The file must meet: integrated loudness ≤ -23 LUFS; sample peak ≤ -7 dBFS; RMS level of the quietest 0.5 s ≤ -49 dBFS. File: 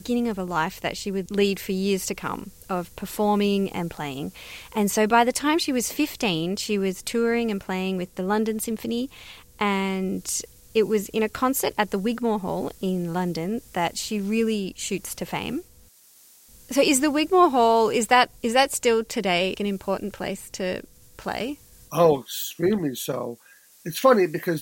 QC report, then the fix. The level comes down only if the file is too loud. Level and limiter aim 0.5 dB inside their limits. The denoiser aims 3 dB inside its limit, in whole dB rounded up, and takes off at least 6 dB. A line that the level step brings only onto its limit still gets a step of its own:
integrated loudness -24.0 LUFS: OK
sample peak -5.0 dBFS: fail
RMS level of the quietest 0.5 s -54 dBFS: OK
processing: limiter -7.5 dBFS

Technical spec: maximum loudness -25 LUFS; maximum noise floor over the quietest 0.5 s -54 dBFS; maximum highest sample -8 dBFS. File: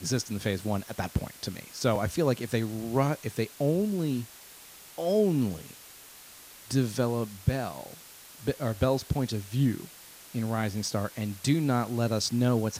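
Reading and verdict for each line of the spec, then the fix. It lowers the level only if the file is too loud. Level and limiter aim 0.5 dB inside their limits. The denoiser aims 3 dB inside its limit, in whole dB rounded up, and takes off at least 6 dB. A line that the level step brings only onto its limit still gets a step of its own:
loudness -29.5 LUFS: OK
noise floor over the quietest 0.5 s -50 dBFS: fail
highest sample -11.5 dBFS: OK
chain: denoiser 7 dB, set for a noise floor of -50 dBFS

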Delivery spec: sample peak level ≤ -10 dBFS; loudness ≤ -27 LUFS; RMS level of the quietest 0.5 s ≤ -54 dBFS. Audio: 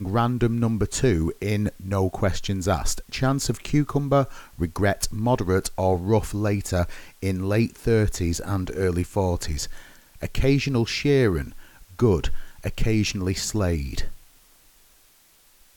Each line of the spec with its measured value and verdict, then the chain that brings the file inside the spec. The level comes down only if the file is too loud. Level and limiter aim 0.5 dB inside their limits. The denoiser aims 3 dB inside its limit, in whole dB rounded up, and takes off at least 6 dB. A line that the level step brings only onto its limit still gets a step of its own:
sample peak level -8.0 dBFS: fail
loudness -24.5 LUFS: fail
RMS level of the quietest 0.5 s -57 dBFS: OK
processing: gain -3 dB

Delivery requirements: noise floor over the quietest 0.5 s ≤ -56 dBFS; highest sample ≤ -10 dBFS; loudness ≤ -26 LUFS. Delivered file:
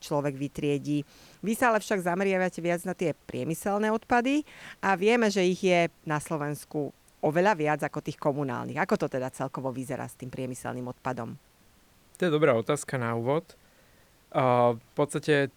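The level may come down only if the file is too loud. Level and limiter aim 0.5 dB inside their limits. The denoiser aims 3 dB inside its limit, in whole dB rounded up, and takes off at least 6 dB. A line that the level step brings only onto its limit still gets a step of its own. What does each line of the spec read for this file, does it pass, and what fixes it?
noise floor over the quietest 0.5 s -60 dBFS: OK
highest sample -8.5 dBFS: fail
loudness -28.0 LUFS: OK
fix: limiter -10.5 dBFS

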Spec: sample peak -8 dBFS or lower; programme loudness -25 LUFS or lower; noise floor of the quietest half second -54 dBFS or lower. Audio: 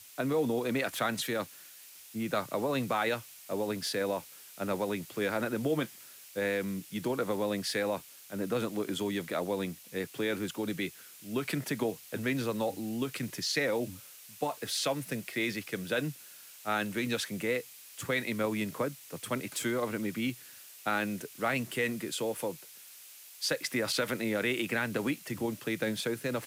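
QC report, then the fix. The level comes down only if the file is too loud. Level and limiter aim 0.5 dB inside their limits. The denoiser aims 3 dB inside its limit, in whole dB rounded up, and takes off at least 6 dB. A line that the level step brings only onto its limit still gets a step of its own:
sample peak -18.0 dBFS: OK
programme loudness -33.5 LUFS: OK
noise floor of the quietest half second -52 dBFS: fail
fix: denoiser 6 dB, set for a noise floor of -52 dBFS

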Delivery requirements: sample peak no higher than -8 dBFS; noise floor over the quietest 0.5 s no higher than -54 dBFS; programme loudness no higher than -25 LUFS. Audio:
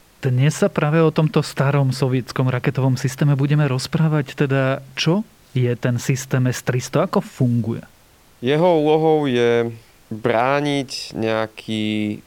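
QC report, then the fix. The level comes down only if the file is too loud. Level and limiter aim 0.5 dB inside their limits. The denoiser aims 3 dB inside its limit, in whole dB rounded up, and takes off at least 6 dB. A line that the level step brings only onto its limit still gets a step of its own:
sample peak -4.5 dBFS: fail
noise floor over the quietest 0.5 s -51 dBFS: fail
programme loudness -19.5 LUFS: fail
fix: gain -6 dB

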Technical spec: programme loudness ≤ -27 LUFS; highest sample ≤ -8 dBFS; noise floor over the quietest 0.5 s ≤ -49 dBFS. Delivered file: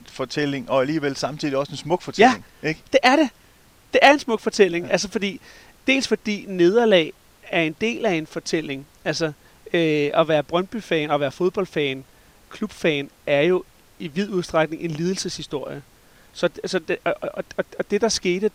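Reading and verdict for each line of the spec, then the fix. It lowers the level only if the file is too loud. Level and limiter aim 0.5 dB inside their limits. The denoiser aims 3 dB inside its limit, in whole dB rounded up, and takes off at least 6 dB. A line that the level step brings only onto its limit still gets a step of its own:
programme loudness -21.5 LUFS: fail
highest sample -1.5 dBFS: fail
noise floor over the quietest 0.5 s -53 dBFS: OK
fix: gain -6 dB; limiter -8.5 dBFS

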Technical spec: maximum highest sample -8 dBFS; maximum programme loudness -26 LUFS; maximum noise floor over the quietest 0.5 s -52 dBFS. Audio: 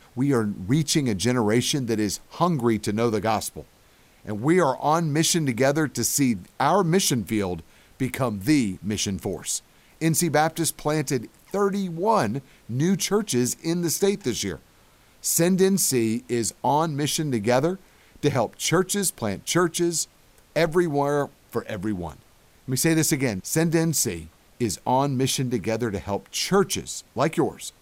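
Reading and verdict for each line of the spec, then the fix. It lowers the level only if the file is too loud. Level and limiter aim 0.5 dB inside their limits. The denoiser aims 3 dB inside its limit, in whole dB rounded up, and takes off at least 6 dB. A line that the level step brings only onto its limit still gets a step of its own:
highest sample -8.5 dBFS: OK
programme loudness -24.0 LUFS: fail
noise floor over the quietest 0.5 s -56 dBFS: OK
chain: gain -2.5 dB

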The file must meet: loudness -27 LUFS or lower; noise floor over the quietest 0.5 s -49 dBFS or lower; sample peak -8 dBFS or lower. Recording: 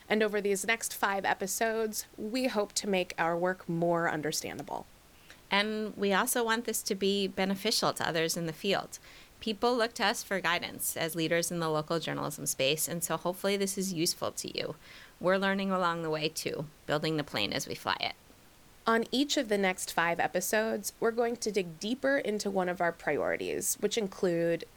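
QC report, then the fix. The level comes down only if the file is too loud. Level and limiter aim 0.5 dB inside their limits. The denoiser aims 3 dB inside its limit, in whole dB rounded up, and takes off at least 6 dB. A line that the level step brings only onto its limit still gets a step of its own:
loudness -31.0 LUFS: OK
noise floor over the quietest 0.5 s -58 dBFS: OK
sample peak -13.5 dBFS: OK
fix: none

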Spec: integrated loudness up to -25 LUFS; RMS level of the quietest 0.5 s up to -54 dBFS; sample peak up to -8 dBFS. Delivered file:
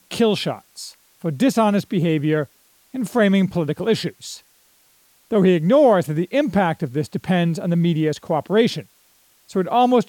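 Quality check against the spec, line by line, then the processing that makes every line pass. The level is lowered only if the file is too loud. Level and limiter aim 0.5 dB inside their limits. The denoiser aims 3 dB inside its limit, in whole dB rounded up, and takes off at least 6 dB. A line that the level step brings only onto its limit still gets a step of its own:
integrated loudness -19.5 LUFS: fail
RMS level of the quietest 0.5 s -57 dBFS: OK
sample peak -5.5 dBFS: fail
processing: gain -6 dB

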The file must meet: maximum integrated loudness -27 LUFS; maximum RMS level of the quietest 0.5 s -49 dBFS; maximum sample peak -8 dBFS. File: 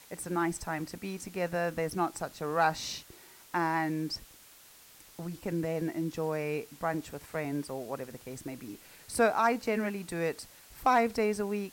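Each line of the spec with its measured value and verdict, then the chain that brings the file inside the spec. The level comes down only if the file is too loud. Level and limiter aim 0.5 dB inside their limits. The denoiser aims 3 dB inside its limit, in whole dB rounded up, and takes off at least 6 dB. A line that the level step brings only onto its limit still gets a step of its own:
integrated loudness -32.5 LUFS: OK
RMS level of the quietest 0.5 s -56 dBFS: OK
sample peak -14.5 dBFS: OK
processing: none

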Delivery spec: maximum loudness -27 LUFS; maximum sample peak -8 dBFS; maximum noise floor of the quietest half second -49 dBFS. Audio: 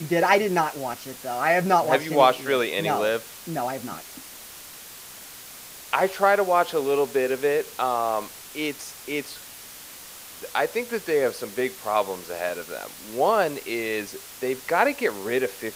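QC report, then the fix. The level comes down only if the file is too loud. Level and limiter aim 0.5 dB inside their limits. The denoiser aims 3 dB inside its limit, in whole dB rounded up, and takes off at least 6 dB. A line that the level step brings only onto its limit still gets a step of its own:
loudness -24.5 LUFS: fail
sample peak -5.0 dBFS: fail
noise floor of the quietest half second -42 dBFS: fail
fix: denoiser 7 dB, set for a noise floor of -42 dBFS; gain -3 dB; limiter -8.5 dBFS

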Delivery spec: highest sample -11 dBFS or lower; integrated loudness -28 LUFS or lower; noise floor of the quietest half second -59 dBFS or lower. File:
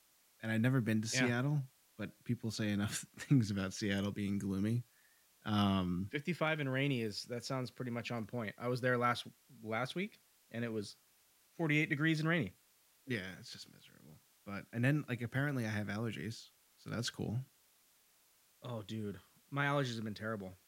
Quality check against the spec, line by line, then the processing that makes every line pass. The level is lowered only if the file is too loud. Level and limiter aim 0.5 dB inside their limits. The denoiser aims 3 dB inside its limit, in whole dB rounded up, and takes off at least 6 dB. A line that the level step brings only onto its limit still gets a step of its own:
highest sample -19.5 dBFS: OK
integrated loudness -37.5 LUFS: OK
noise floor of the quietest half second -70 dBFS: OK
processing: none

